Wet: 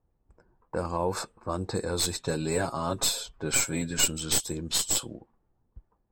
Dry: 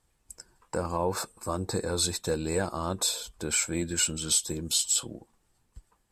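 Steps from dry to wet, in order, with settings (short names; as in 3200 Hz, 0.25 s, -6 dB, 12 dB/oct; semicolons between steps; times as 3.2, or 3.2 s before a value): tracing distortion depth 0.032 ms; 2.17–4.08 comb 7.3 ms, depth 80%; low-pass opened by the level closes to 720 Hz, open at -24.5 dBFS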